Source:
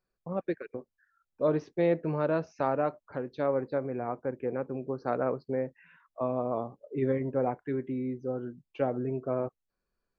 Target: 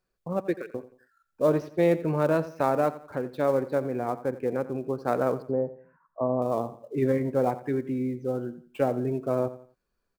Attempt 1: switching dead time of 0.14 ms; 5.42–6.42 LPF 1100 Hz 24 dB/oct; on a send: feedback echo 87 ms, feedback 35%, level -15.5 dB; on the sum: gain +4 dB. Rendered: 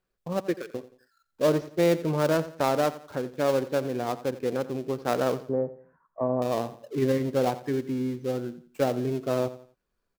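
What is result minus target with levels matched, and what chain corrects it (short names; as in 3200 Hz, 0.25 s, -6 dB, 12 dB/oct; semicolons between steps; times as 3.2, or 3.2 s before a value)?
switching dead time: distortion +14 dB
switching dead time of 0.039 ms; 5.42–6.42 LPF 1100 Hz 24 dB/oct; on a send: feedback echo 87 ms, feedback 35%, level -15.5 dB; on the sum: gain +4 dB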